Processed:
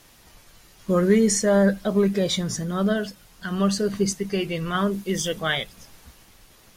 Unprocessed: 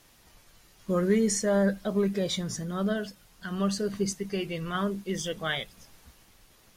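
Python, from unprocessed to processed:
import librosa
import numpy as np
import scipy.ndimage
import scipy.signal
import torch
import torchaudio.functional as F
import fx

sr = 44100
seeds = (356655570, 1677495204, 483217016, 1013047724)

y = fx.high_shelf(x, sr, hz=8200.0, db=5.5, at=(4.93, 5.4))
y = F.gain(torch.from_numpy(y), 6.0).numpy()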